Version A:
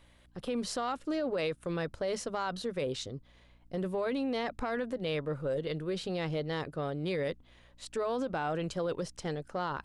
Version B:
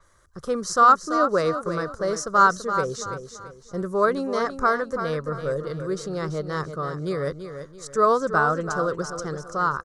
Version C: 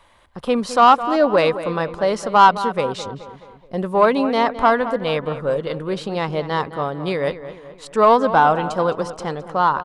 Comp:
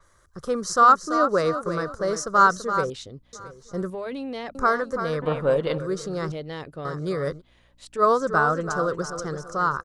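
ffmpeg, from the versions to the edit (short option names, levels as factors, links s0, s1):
-filter_complex "[0:a]asplit=4[s0][s1][s2][s3];[1:a]asplit=6[s4][s5][s6][s7][s8][s9];[s4]atrim=end=2.902[s10];[s0]atrim=start=2.898:end=3.332[s11];[s5]atrim=start=3.328:end=3.902[s12];[s1]atrim=start=3.898:end=4.552[s13];[s6]atrim=start=4.548:end=5.222[s14];[2:a]atrim=start=5.218:end=5.782[s15];[s7]atrim=start=5.778:end=6.322[s16];[s2]atrim=start=6.318:end=6.852[s17];[s8]atrim=start=6.848:end=7.42[s18];[s3]atrim=start=7.36:end=8.03[s19];[s9]atrim=start=7.97[s20];[s10][s11]acrossfade=d=0.004:c1=hsin:c2=hsin[s21];[s21][s12]acrossfade=d=0.004:c1=hsin:c2=hsin[s22];[s22][s13]acrossfade=d=0.004:c1=hsin:c2=hsin[s23];[s23][s14]acrossfade=d=0.004:c1=hsin:c2=hsin[s24];[s24][s15]acrossfade=d=0.004:c1=hsin:c2=hsin[s25];[s25][s16]acrossfade=d=0.004:c1=hsin:c2=hsin[s26];[s26][s17]acrossfade=d=0.004:c1=hsin:c2=hsin[s27];[s27][s18]acrossfade=d=0.004:c1=hsin:c2=hsin[s28];[s28][s19]acrossfade=d=0.06:c1=tri:c2=tri[s29];[s29][s20]acrossfade=d=0.06:c1=tri:c2=tri"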